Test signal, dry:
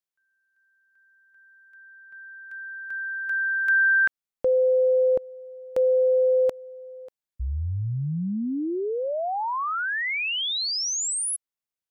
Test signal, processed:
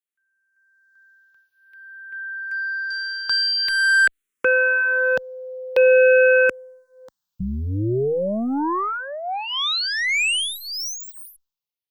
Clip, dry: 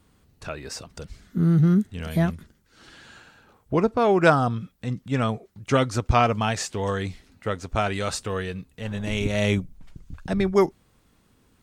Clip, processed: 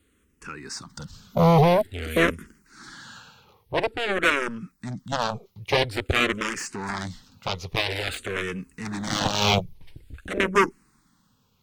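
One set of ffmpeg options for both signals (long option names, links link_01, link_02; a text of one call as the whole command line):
ffmpeg -i in.wav -filter_complex "[0:a]dynaudnorm=framelen=160:gausssize=11:maxgain=12.5dB,equalizer=frequency=660:width_type=o:width=0.38:gain=-14.5,aeval=exprs='0.841*(cos(1*acos(clip(val(0)/0.841,-1,1)))-cos(1*PI/2))+0.0299*(cos(2*acos(clip(val(0)/0.841,-1,1)))-cos(2*PI/2))+0.106*(cos(3*acos(clip(val(0)/0.841,-1,1)))-cos(3*PI/2))+0.00596*(cos(5*acos(clip(val(0)/0.841,-1,1)))-cos(5*PI/2))+0.119*(cos(7*acos(clip(val(0)/0.841,-1,1)))-cos(7*PI/2))':channel_layout=same,apsyclip=18dB,lowshelf=frequency=130:gain=-7,acrossover=split=5500[link_01][link_02];[link_02]acompressor=threshold=-28dB:ratio=4:attack=1:release=60[link_03];[link_01][link_03]amix=inputs=2:normalize=0,asplit=2[link_04][link_05];[link_05]afreqshift=-0.49[link_06];[link_04][link_06]amix=inputs=2:normalize=1,volume=-7.5dB" out.wav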